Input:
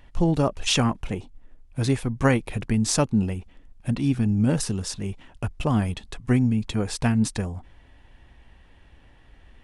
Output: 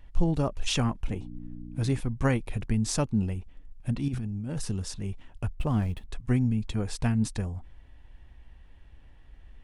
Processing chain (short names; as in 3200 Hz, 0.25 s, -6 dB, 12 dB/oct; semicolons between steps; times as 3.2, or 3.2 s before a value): 5.54–6.1 median filter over 9 samples; low shelf 91 Hz +11 dB; 1.07–1.99 buzz 60 Hz, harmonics 5, -35 dBFS 0 dB/oct; 4.08–4.64 negative-ratio compressor -25 dBFS, ratio -1; gain -7 dB